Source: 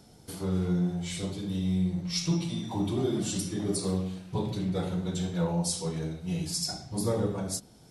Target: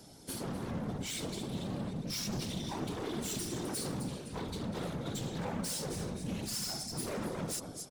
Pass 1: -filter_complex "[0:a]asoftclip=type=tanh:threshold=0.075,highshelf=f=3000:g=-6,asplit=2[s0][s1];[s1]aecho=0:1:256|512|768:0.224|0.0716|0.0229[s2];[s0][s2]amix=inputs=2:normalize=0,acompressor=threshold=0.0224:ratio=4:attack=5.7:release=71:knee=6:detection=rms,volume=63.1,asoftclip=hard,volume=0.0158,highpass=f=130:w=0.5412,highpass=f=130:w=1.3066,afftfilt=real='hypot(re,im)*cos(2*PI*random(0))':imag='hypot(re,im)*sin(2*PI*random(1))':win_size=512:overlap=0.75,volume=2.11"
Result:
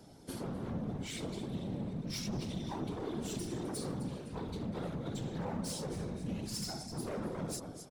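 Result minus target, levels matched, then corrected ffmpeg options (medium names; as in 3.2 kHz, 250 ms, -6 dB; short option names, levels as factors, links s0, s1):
compression: peak gain reduction +7.5 dB; 8 kHz band -4.0 dB
-filter_complex "[0:a]asoftclip=type=tanh:threshold=0.075,highshelf=f=3000:g=4,asplit=2[s0][s1];[s1]aecho=0:1:256|512|768:0.224|0.0716|0.0229[s2];[s0][s2]amix=inputs=2:normalize=0,volume=63.1,asoftclip=hard,volume=0.0158,highpass=f=130:w=0.5412,highpass=f=130:w=1.3066,afftfilt=real='hypot(re,im)*cos(2*PI*random(0))':imag='hypot(re,im)*sin(2*PI*random(1))':win_size=512:overlap=0.75,volume=2.11"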